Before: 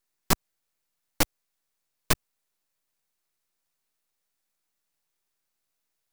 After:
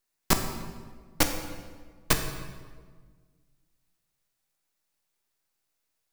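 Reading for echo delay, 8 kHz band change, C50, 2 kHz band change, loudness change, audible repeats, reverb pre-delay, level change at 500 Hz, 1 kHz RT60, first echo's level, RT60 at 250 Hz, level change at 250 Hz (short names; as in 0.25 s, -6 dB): none, +1.0 dB, 7.0 dB, +1.0 dB, -0.5 dB, none, 15 ms, +1.5 dB, 1.4 s, none, 2.0 s, +2.0 dB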